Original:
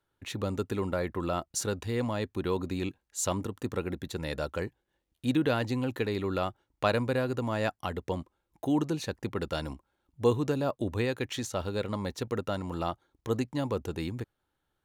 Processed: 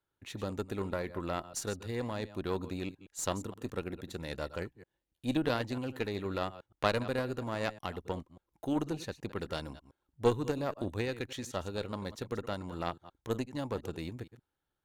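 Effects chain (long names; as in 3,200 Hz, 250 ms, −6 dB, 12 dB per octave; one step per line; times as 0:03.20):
delay that plays each chunk backwards 118 ms, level −13 dB
harmonic generator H 2 −9 dB, 7 −27 dB, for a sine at −11 dBFS
level −3.5 dB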